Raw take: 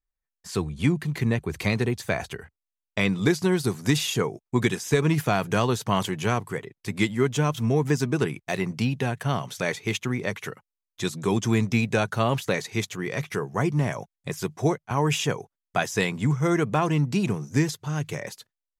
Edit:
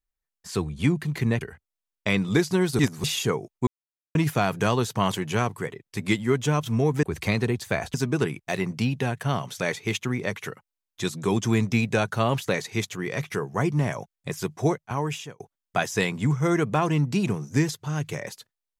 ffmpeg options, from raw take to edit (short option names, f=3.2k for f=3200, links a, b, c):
-filter_complex "[0:a]asplit=9[a][b][c][d][e][f][g][h][i];[a]atrim=end=1.412[j];[b]atrim=start=2.318:end=3.702[k];[c]atrim=start=3.698:end=3.952,asetpts=PTS-STARTPTS,areverse[l];[d]atrim=start=3.948:end=4.58,asetpts=PTS-STARTPTS,afade=t=out:st=0.628:d=0.004:c=hsin[m];[e]atrim=start=4.58:end=5.06,asetpts=PTS-STARTPTS,volume=0[n];[f]atrim=start=5.06:end=7.942,asetpts=PTS-STARTPTS,afade=t=in:d=0.004:c=hsin[o];[g]atrim=start=1.408:end=2.322[p];[h]atrim=start=7.938:end=15.4,asetpts=PTS-STARTPTS,afade=t=out:st=6.842:d=0.62[q];[i]atrim=start=15.4,asetpts=PTS-STARTPTS,afade=t=in:d=0.004:c=hsin[r];[j][k]acrossfade=d=0.004:c1=hsin:c2=hsin[s];[s][l]acrossfade=d=0.004:c1=hsin:c2=hsin[t];[m][n][o]concat=n=3:v=0:a=1[u];[t][u]acrossfade=d=0.004:c1=hsin:c2=hsin[v];[v][p]acrossfade=d=0.004:c1=hsin:c2=hsin[w];[q][r]concat=n=2:v=0:a=1[x];[w][x]acrossfade=d=0.004:c1=hsin:c2=hsin"